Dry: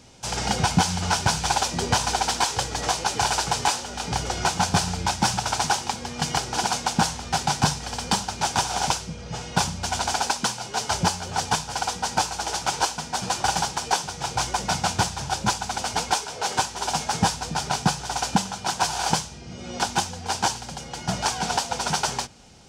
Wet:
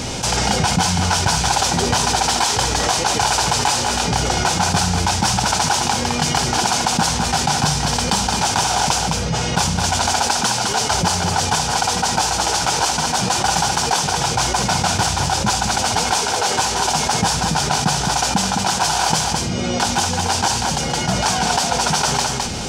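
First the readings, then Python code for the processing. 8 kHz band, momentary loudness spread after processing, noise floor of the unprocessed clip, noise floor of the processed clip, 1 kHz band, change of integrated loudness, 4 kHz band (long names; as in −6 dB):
+8.5 dB, 2 LU, −39 dBFS, −22 dBFS, +6.5 dB, +7.5 dB, +8.0 dB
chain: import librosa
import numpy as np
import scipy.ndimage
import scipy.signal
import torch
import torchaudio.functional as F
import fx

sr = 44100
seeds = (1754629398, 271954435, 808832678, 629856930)

p1 = x + fx.echo_single(x, sr, ms=211, db=-10.0, dry=0)
y = fx.env_flatten(p1, sr, amount_pct=70)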